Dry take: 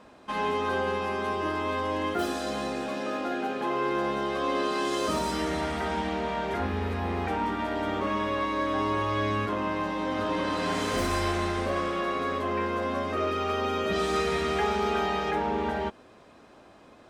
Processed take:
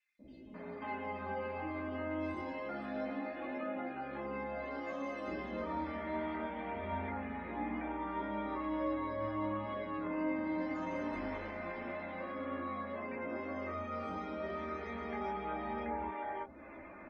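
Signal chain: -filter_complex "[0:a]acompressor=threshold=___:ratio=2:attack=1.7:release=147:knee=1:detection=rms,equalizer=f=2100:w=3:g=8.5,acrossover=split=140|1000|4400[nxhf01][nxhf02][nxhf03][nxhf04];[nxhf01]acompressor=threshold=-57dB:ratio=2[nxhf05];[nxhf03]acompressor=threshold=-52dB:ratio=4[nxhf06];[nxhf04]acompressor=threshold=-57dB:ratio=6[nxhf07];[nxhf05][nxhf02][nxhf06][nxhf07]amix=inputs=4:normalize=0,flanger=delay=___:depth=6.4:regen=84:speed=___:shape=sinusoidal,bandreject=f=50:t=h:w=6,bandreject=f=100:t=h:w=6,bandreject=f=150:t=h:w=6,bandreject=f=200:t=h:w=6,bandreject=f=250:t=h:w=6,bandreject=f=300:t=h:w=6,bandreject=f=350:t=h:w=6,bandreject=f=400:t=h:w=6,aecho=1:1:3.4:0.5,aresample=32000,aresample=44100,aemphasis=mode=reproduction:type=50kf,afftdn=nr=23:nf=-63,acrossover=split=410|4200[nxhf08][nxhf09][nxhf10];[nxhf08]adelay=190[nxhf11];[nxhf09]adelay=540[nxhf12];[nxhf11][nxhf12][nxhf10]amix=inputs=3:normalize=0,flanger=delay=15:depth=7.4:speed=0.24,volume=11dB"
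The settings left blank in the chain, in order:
-46dB, 6.8, 0.64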